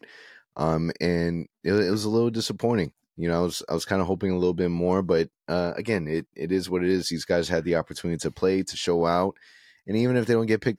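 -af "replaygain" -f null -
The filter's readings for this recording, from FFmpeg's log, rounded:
track_gain = +6.0 dB
track_peak = 0.276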